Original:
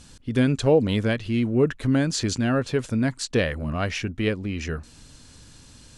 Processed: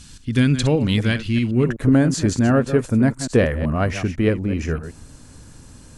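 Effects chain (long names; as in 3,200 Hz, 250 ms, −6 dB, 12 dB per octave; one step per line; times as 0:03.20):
delay that plays each chunk backwards 126 ms, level −11 dB
parametric band 580 Hz −11 dB 1.7 octaves, from 0:01.69 3,700 Hz
level +6.5 dB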